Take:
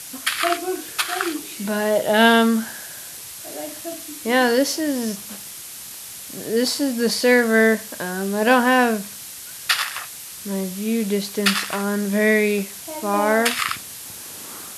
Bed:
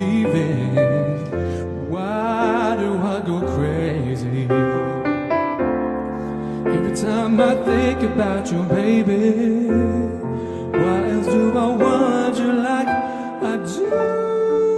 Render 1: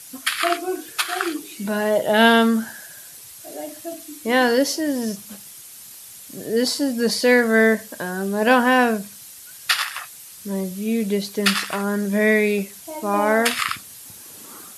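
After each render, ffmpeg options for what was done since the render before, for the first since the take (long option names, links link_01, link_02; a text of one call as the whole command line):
ffmpeg -i in.wav -af "afftdn=noise_reduction=8:noise_floor=-37" out.wav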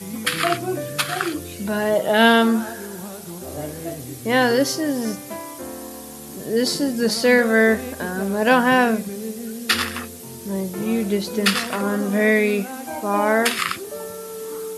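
ffmpeg -i in.wav -i bed.wav -filter_complex "[1:a]volume=-14dB[link_01];[0:a][link_01]amix=inputs=2:normalize=0" out.wav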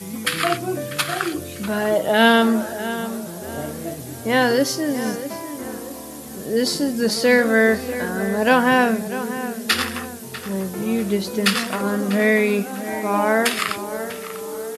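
ffmpeg -i in.wav -filter_complex "[0:a]asplit=2[link_01][link_02];[link_02]adelay=645,lowpass=frequency=2600:poles=1,volume=-12dB,asplit=2[link_03][link_04];[link_04]adelay=645,lowpass=frequency=2600:poles=1,volume=0.4,asplit=2[link_05][link_06];[link_06]adelay=645,lowpass=frequency=2600:poles=1,volume=0.4,asplit=2[link_07][link_08];[link_08]adelay=645,lowpass=frequency=2600:poles=1,volume=0.4[link_09];[link_01][link_03][link_05][link_07][link_09]amix=inputs=5:normalize=0" out.wav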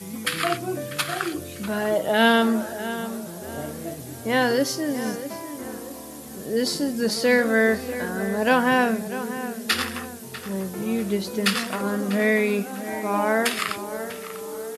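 ffmpeg -i in.wav -af "volume=-3.5dB" out.wav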